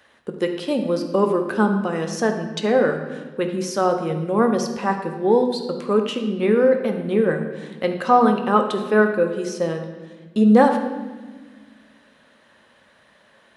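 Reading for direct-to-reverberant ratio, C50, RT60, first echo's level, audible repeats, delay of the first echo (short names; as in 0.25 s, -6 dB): 4.5 dB, 7.0 dB, 1.3 s, none, none, none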